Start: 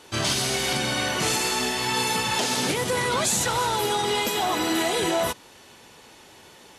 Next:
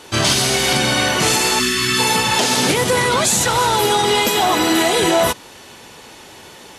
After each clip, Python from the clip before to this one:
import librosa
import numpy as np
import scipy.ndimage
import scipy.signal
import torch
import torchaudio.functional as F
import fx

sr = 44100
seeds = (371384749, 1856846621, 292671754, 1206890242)

y = fx.spec_box(x, sr, start_s=1.6, length_s=0.39, low_hz=410.0, high_hz=1000.0, gain_db=-25)
y = fx.rider(y, sr, range_db=10, speed_s=0.5)
y = y * 10.0 ** (8.5 / 20.0)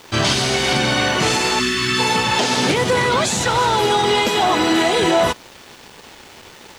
y = fx.quant_dither(x, sr, seeds[0], bits=6, dither='none')
y = fx.air_absorb(y, sr, metres=70.0)
y = fx.dmg_noise_colour(y, sr, seeds[1], colour='violet', level_db=-57.0)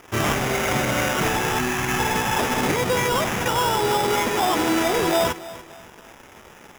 y = fx.echo_feedback(x, sr, ms=288, feedback_pct=34, wet_db=-17.0)
y = fx.sample_hold(y, sr, seeds[2], rate_hz=4300.0, jitter_pct=0)
y = y * 10.0 ** (-4.5 / 20.0)